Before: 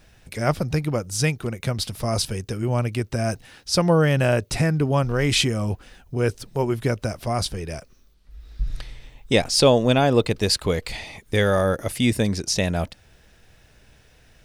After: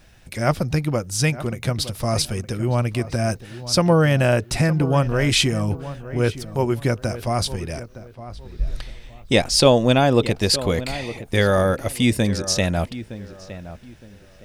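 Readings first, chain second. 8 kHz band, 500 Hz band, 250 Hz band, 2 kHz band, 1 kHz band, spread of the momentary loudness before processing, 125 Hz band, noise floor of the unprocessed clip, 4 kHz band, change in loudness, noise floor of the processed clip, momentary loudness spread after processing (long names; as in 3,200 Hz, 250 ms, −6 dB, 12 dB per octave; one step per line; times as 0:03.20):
+2.0 dB, +1.5 dB, +2.0 dB, +2.0 dB, +2.0 dB, 15 LU, +2.0 dB, −55 dBFS, +2.0 dB, +1.5 dB, −48 dBFS, 19 LU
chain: notch filter 440 Hz, Q 12
on a send: feedback echo with a low-pass in the loop 914 ms, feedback 29%, low-pass 1,900 Hz, level −14 dB
on the sum: level +2 dB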